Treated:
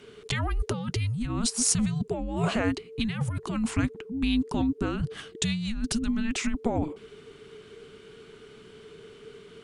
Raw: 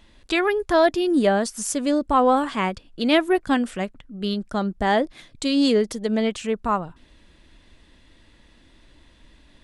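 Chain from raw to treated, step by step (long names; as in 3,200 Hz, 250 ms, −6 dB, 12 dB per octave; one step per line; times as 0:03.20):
compressor whose output falls as the input rises −26 dBFS, ratio −1
frequency shifter −460 Hz
level −1 dB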